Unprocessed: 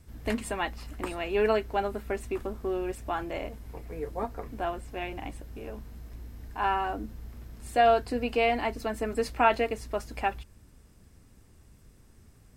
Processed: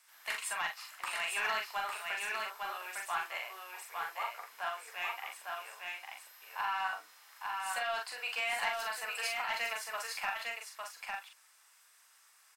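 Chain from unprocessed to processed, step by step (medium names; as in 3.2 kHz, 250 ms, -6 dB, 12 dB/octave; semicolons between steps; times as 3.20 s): high-pass 1 kHz 24 dB/octave; compressor with a negative ratio -33 dBFS, ratio -1; saturation -26 dBFS, distortion -18 dB; doubling 42 ms -4 dB; delay 854 ms -3.5 dB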